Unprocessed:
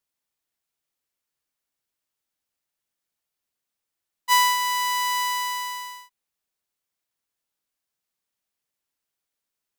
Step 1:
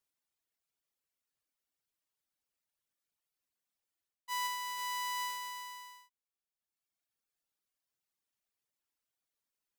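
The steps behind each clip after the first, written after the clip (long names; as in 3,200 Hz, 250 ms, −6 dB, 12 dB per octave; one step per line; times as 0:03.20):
reverb reduction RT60 1.4 s
reversed playback
downward compressor 16 to 1, threshold −31 dBFS, peak gain reduction 16.5 dB
reversed playback
level −3 dB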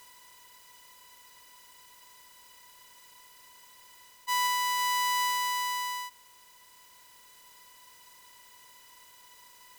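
compressor on every frequency bin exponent 0.4
level +7.5 dB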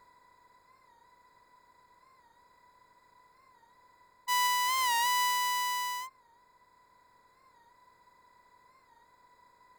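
adaptive Wiener filter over 15 samples
wow of a warped record 45 rpm, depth 100 cents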